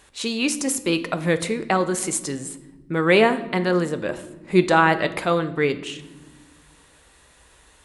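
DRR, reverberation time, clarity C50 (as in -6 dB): 10.0 dB, 1.3 s, 14.5 dB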